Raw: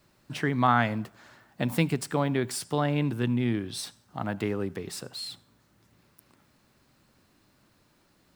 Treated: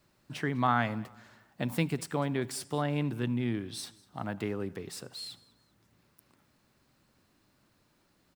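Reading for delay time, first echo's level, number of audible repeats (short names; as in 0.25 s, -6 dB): 0.199 s, -23.0 dB, 2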